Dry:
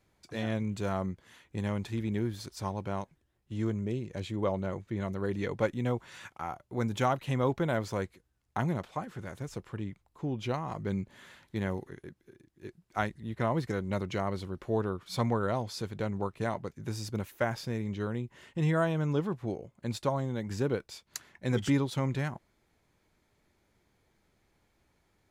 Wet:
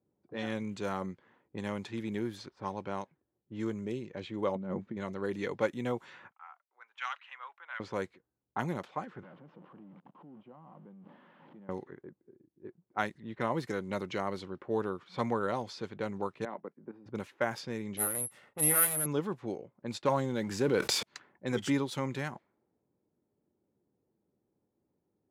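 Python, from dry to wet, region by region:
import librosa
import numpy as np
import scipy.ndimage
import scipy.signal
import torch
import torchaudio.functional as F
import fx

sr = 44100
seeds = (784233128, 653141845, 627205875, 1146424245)

y = fx.chain(x, sr, fx.lowpass(hz=1100.0, slope=6),
    fx.peak_eq(hz=210.0, db=12.0, octaves=0.5),
    fx.over_compress(threshold_db=-33.0, ratio=-1.0), at=(4.55, 4.97))
y = fx.chain(y, sr, fx.highpass(hz=1300.0, slope=24),
    fx.peak_eq(hz=2800.0, db=5.5, octaves=0.41), at=(6.31, 7.8))
y = fx.chain(y, sr, fx.zero_step(step_db=-37.0),
    fx.cabinet(low_hz=160.0, low_slope=24, high_hz=4900.0, hz=(170.0, 410.0, 1100.0, 3000.0), db=(6, -9, 3, 9)),
    fx.level_steps(step_db=24), at=(9.23, 11.69))
y = fx.chain(y, sr, fx.highpass(hz=180.0, slope=24),
    fx.air_absorb(metres=440.0),
    fx.level_steps(step_db=13), at=(16.45, 17.06))
y = fx.chain(y, sr, fx.lower_of_two(delay_ms=1.5),
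    fx.resample_bad(factor=4, down='none', up='zero_stuff'), at=(17.97, 19.06))
y = fx.chain(y, sr, fx.leveller(passes=1),
    fx.sustainer(db_per_s=28.0), at=(20.05, 21.03))
y = fx.notch(y, sr, hz=660.0, q=12.0)
y = fx.env_lowpass(y, sr, base_hz=410.0, full_db=-28.5)
y = scipy.signal.sosfilt(scipy.signal.bessel(2, 230.0, 'highpass', norm='mag', fs=sr, output='sos'), y)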